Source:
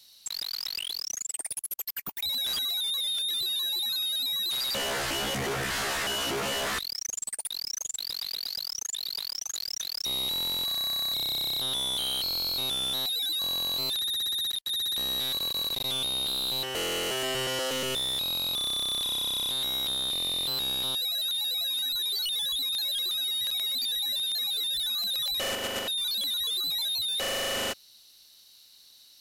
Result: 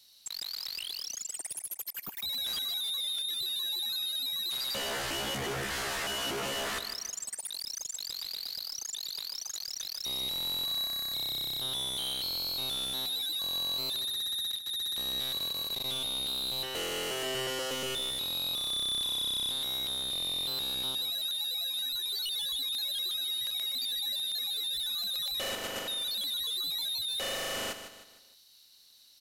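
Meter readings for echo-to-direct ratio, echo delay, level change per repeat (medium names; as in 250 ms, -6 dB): -9.0 dB, 154 ms, -7.5 dB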